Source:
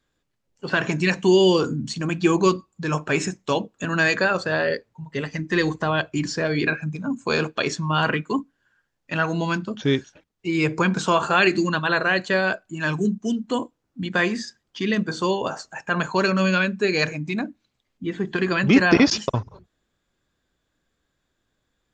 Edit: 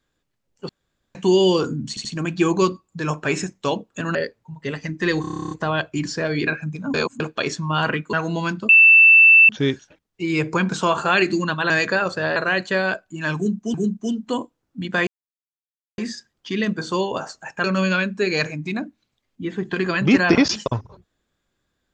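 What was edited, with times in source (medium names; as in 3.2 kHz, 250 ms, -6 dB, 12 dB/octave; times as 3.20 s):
0.69–1.15 s: room tone
1.89 s: stutter 0.08 s, 3 plays
3.99–4.65 s: move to 11.95 s
5.71 s: stutter 0.03 s, 11 plays
7.14–7.40 s: reverse
8.33–9.18 s: delete
9.74 s: add tone 2.66 kHz -7 dBFS 0.80 s
12.95–13.33 s: loop, 2 plays
14.28 s: insert silence 0.91 s
15.94–16.26 s: delete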